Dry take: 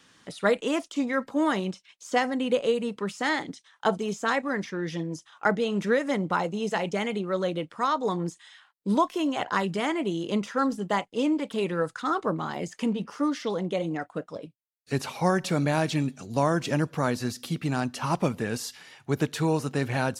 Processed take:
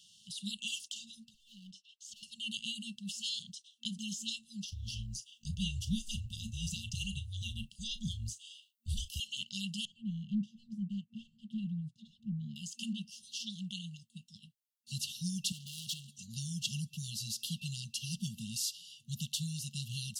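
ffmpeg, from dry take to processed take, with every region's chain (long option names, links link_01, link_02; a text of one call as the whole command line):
ffmpeg -i in.wav -filter_complex "[0:a]asettb=1/sr,asplit=3[link_01][link_02][link_03];[link_01]atrim=end=1.254[link_04];[link_02]atrim=start=1.25:end=2.23,asetpts=PTS-STARTPTS,afade=type=in:duration=0.004:curve=qsin,afade=type=out:start_time=0.976:duration=0.004:curve=qsin,aemphasis=mode=reproduction:type=50kf,acompressor=threshold=-36dB:ratio=10:attack=3.2:release=140:knee=1:detection=peak,asoftclip=type=hard:threshold=-38.5dB[link_05];[link_03]atrim=start=2.226[link_06];[link_04][link_05]acrossfade=duration=0.004:curve1=hsin:curve2=qsin[link_07];[link_07][link_06]acrossfade=duration=0.004:curve1=qsin:curve2=hsin,asettb=1/sr,asplit=3[link_08][link_09][link_10];[link_08]atrim=end=4.684[link_11];[link_09]atrim=start=4.68:end=9.2,asetpts=PTS-STARTPTS,afade=type=in:duration=0.004:curve=qsin,afade=type=out:start_time=4.516:duration=0.004:curve=qsin,afreqshift=-280,highshelf=frequency=11000:gain=9,asplit=2[link_12][link_13];[link_13]adelay=36,volume=-14dB[link_14];[link_12][link_14]amix=inputs=2:normalize=0,atrim=end_sample=199332[link_15];[link_10]atrim=start=9.196[link_16];[link_11][link_15]acrossfade=duration=0.004:curve1=hsin:curve2=qsin[link_17];[link_17][link_16]acrossfade=duration=0.004:curve1=qsin:curve2=hsin,asettb=1/sr,asplit=3[link_18][link_19][link_20];[link_18]atrim=end=9.854[link_21];[link_19]atrim=start=9.85:end=12.56,asetpts=PTS-STARTPTS,afade=type=in:duration=0.004:curve=qsin,afade=type=out:start_time=2.706:duration=0.004:curve=qsin,bandpass=frequency=140:width_type=q:width=0.85,aeval=exprs='0.119*sin(PI/2*1.58*val(0)/0.119)':channel_layout=same[link_22];[link_20]atrim=start=12.556[link_23];[link_21][link_22]acrossfade=duration=0.004:curve1=hsin:curve2=qsin[link_24];[link_24][link_23]acrossfade=duration=0.004:curve1=qsin:curve2=hsin,asettb=1/sr,asplit=3[link_25][link_26][link_27];[link_25]atrim=end=15.524[link_28];[link_26]atrim=start=15.52:end=16.19,asetpts=PTS-STARTPTS,afade=type=in:duration=0.004:curve=qsin,afade=type=out:start_time=0.666:duration=0.004:curve=qsin,volume=33dB,asoftclip=hard,volume=-33dB,highpass=140[link_29];[link_27]atrim=start=16.186[link_30];[link_28][link_29]acrossfade=duration=0.004:curve1=hsin:curve2=qsin[link_31];[link_31][link_30]acrossfade=duration=0.004:curve1=qsin:curve2=hsin,afftfilt=real='re*(1-between(b*sr/4096,230,2700))':imag='im*(1-between(b*sr/4096,230,2700))':win_size=4096:overlap=0.75,lowshelf=frequency=470:gain=-12,volume=1dB" out.wav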